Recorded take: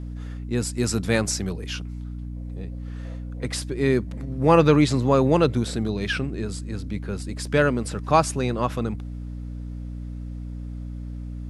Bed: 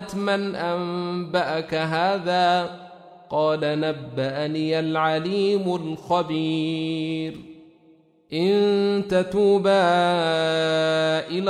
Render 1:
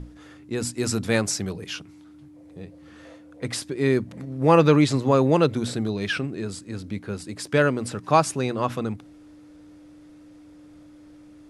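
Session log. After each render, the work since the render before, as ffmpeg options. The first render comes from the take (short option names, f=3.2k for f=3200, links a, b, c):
-af "bandreject=f=60:t=h:w=6,bandreject=f=120:t=h:w=6,bandreject=f=180:t=h:w=6,bandreject=f=240:t=h:w=6"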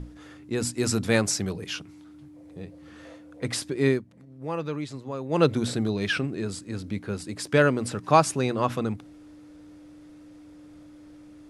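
-filter_complex "[0:a]asplit=3[a][b][c];[a]atrim=end=4.02,asetpts=PTS-STARTPTS,afade=t=out:st=3.88:d=0.14:silence=0.177828[d];[b]atrim=start=4.02:end=5.29,asetpts=PTS-STARTPTS,volume=-15dB[e];[c]atrim=start=5.29,asetpts=PTS-STARTPTS,afade=t=in:d=0.14:silence=0.177828[f];[d][e][f]concat=n=3:v=0:a=1"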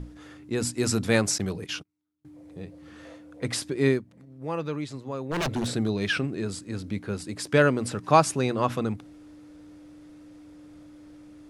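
-filter_complex "[0:a]asettb=1/sr,asplit=3[a][b][c];[a]atrim=end=1.384[d];[b]atrim=start=1.38:end=2.25,asetpts=PTS-STARTPTS,afade=t=in:d=0.004:c=qsin,afade=t=out:st=0.866:d=0.004:c=qsin,agate=range=-35dB:threshold=-40dB:ratio=16:release=100:detection=peak[e];[c]atrim=start=2.246[f];[d][e]acrossfade=d=0.004:c1=hsin:c2=qsin[g];[g][f]acrossfade=d=0.004:c1=qsin:c2=hsin,asettb=1/sr,asplit=3[h][i][j];[h]atrim=end=5.234[k];[i]atrim=start=5.23:end=5.69,asetpts=PTS-STARTPTS,afade=t=in:d=0.004:c=qsin,afade=t=out:st=0.456:d=0.004:c=qsin,aeval=exprs='0.0841*(abs(mod(val(0)/0.0841+3,4)-2)-1)':c=same[l];[j]atrim=start=5.686[m];[k][l]acrossfade=d=0.004:c1=hsin:c2=qsin[n];[n][m]acrossfade=d=0.004:c1=qsin:c2=hsin"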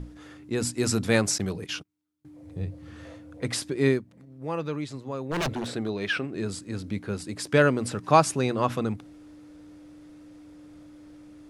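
-filter_complex "[0:a]asettb=1/sr,asplit=3[a][b][c];[a]atrim=end=2.424[d];[b]atrim=start=2.42:end=3.41,asetpts=PTS-STARTPTS,afade=t=in:d=0.004:c=qsin,afade=t=out:st=0.986:d=0.004:c=qsin,equalizer=f=97:w=1.5:g=14.5[e];[c]atrim=start=3.406[f];[d][e]acrossfade=d=0.004:c1=hsin:c2=qsin[g];[g][f]acrossfade=d=0.004:c1=qsin:c2=hsin,asettb=1/sr,asplit=3[h][i][j];[h]atrim=end=5.534[k];[i]atrim=start=5.53:end=6.35,asetpts=PTS-STARTPTS,afade=t=in:d=0.004:c=qsin,afade=t=out:st=0.816:d=0.004:c=qsin,bass=f=250:g=-8,treble=f=4k:g=-7[l];[j]atrim=start=6.346[m];[k][l]acrossfade=d=0.004:c1=hsin:c2=qsin[n];[n][m]acrossfade=d=0.004:c1=qsin:c2=hsin"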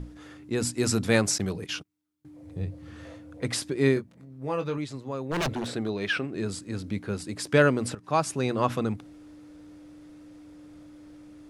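-filter_complex "[0:a]asettb=1/sr,asplit=3[a][b][c];[a]atrim=end=3.944[d];[b]atrim=start=3.94:end=4.78,asetpts=PTS-STARTPTS,afade=t=in:d=0.004:c=qsin,afade=t=out:st=0.836:d=0.004:c=qsin,asplit=2[e][f];[f]adelay=22,volume=-6.5dB[g];[e][g]amix=inputs=2:normalize=0,atrim=end_sample=37044[h];[c]atrim=start=4.776[i];[d][h]acrossfade=d=0.004:c1=hsin:c2=qsin[j];[j][i]acrossfade=d=0.004:c1=qsin:c2=hsin,asplit=2[k][l];[k]atrim=end=7.95,asetpts=PTS-STARTPTS,afade=t=out:st=7.946:d=0.004:c=hsin:silence=0.177828[m];[l]atrim=start=7.95,asetpts=PTS-STARTPTS,afade=t=in:d=0.62:silence=0.177828[n];[m][n]concat=n=2:v=0:a=1"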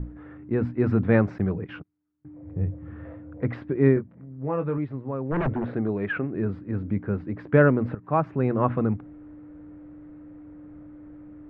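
-af "lowpass=f=1.9k:w=0.5412,lowpass=f=1.9k:w=1.3066,lowshelf=f=340:g=6.5"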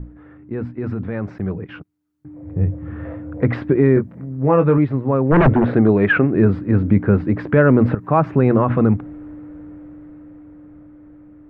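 -af "alimiter=limit=-16.5dB:level=0:latency=1:release=48,dynaudnorm=f=420:g=13:m=14dB"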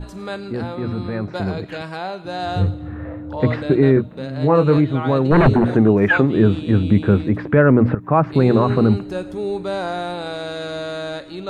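-filter_complex "[1:a]volume=-6.5dB[a];[0:a][a]amix=inputs=2:normalize=0"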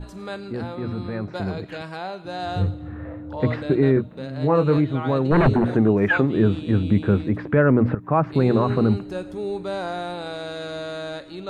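-af "volume=-4dB"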